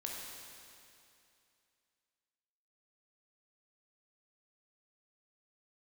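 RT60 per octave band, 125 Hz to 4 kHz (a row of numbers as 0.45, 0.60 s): 2.6, 2.6, 2.6, 2.6, 2.6, 2.6 s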